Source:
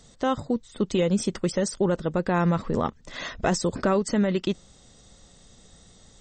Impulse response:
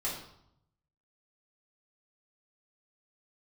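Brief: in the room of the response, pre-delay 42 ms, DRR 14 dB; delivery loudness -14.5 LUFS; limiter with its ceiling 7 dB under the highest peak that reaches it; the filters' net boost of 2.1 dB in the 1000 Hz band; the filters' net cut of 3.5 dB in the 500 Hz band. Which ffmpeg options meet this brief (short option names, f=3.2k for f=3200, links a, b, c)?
-filter_complex "[0:a]equalizer=f=500:t=o:g=-5.5,equalizer=f=1k:t=o:g=4.5,alimiter=limit=-18dB:level=0:latency=1,asplit=2[a][b];[1:a]atrim=start_sample=2205,adelay=42[c];[b][c]afir=irnorm=-1:irlink=0,volume=-18.5dB[d];[a][d]amix=inputs=2:normalize=0,volume=15dB"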